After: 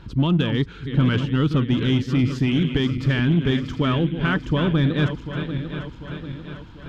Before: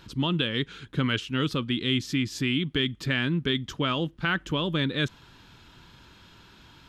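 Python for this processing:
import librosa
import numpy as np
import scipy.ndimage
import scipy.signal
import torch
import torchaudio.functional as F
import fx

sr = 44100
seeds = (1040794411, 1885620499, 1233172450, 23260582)

p1 = fx.reverse_delay_fb(x, sr, ms=372, feedback_pct=72, wet_db=-9.5)
p2 = fx.low_shelf(p1, sr, hz=160.0, db=10.5)
p3 = np.clip(10.0 ** (18.0 / 20.0) * p2, -1.0, 1.0) / 10.0 ** (18.0 / 20.0)
p4 = p2 + (p3 * 10.0 ** (0.5 / 20.0))
p5 = fx.lowpass(p4, sr, hz=1700.0, slope=6)
y = p5 * 10.0 ** (-2.0 / 20.0)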